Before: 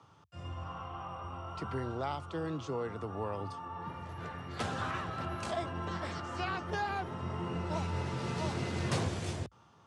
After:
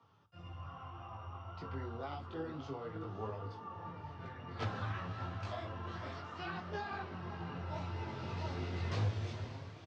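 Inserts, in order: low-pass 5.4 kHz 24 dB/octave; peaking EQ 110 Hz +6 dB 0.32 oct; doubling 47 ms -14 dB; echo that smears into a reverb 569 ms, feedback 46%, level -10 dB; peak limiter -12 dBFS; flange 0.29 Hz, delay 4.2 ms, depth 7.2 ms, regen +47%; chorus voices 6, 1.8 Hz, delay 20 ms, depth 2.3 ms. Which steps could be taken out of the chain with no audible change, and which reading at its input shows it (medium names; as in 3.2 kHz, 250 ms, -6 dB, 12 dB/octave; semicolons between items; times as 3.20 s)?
peak limiter -12 dBFS: peak at its input -19.0 dBFS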